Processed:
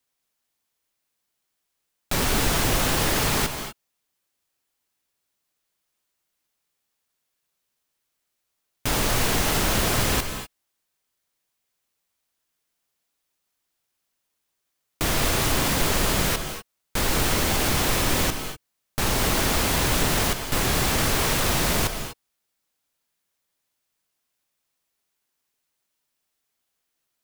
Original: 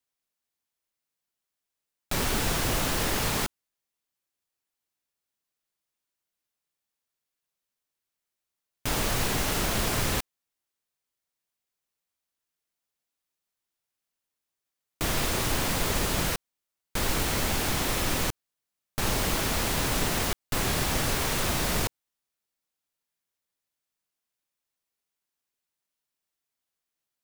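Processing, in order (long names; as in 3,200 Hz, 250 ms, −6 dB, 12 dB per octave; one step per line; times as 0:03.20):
in parallel at +2.5 dB: brickwall limiter −24.5 dBFS, peak gain reduction 10.5 dB
on the sum: reverb whose tail is shaped and stops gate 270 ms rising, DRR 7.5 dB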